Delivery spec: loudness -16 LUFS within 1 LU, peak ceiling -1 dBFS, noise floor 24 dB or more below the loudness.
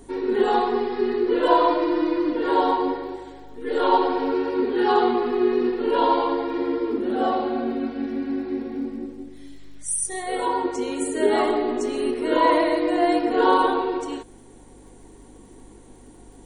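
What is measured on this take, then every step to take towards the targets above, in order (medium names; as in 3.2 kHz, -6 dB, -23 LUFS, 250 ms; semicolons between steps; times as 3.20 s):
tick rate 31 per s; hum 50 Hz; highest harmonic 200 Hz; hum level -50 dBFS; loudness -22.5 LUFS; peak level -4.0 dBFS; loudness target -16.0 LUFS
-> de-click; de-hum 50 Hz, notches 4; trim +6.5 dB; peak limiter -1 dBFS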